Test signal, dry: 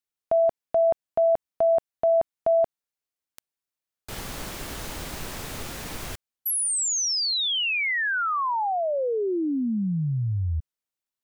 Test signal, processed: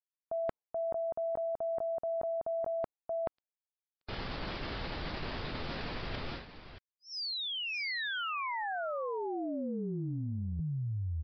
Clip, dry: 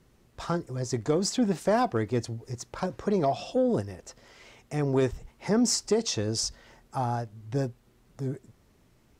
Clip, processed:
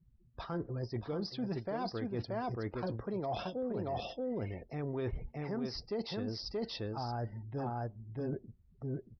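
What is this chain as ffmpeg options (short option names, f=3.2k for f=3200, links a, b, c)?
-af "afftdn=nr=31:nf=-48,aecho=1:1:629:0.562,areverse,acompressor=threshold=-35dB:ratio=12:attack=4.2:release=255:knee=1:detection=peak,areverse,aresample=11025,aresample=44100,volume=2.5dB"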